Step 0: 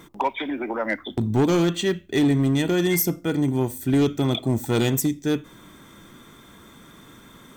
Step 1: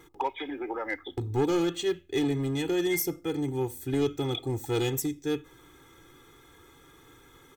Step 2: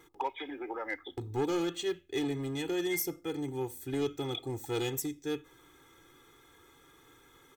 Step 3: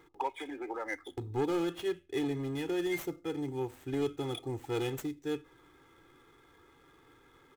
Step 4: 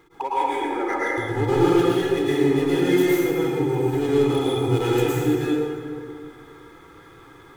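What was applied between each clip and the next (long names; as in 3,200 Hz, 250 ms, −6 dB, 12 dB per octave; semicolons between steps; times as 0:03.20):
comb filter 2.4 ms, depth 89%; level −9 dB
low-shelf EQ 250 Hz −5.5 dB; level −3.5 dB
running median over 9 samples
dense smooth reverb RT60 2.4 s, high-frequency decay 0.5×, pre-delay 95 ms, DRR −8.5 dB; level +5 dB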